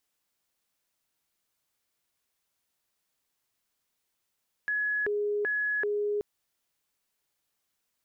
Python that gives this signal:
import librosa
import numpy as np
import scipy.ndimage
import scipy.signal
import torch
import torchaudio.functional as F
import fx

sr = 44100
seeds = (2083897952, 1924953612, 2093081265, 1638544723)

y = fx.siren(sr, length_s=1.53, kind='hi-lo', low_hz=414.0, high_hz=1690.0, per_s=1.3, wave='sine', level_db=-26.0)